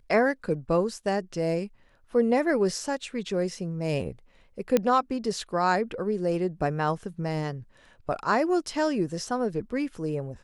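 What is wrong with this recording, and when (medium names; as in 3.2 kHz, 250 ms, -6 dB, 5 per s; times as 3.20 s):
4.77 s: pop -9 dBFS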